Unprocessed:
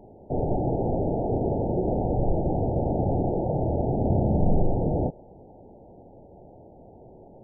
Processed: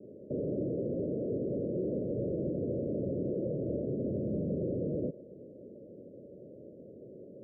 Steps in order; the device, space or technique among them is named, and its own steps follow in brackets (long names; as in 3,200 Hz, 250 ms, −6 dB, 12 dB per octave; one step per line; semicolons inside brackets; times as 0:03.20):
PA system with an anti-feedback notch (high-pass filter 170 Hz 12 dB per octave; Butterworth band-reject 840 Hz, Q 5.3; brickwall limiter −27 dBFS, peak gain reduction 11.5 dB)
Butterworth low-pass 590 Hz 96 dB per octave
level +1.5 dB